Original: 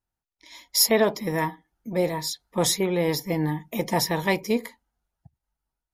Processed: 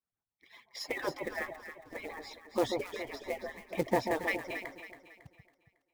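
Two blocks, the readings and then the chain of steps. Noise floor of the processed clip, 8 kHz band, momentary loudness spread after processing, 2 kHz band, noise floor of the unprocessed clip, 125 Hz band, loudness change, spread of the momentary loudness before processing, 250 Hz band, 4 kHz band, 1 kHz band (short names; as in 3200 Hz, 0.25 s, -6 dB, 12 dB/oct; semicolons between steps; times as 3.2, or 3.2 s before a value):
under -85 dBFS, -23.0 dB, 16 LU, -6.0 dB, under -85 dBFS, -17.5 dB, -12.0 dB, 10 LU, -12.5 dB, -17.0 dB, -8.5 dB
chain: median-filter separation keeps percussive; Chebyshev low-pass 1900 Hz, order 2; dynamic EQ 1100 Hz, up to -5 dB, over -45 dBFS, Q 1.3; short-mantissa float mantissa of 2-bit; echo with dull and thin repeats by turns 0.138 s, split 960 Hz, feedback 63%, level -5 dB; gain -2 dB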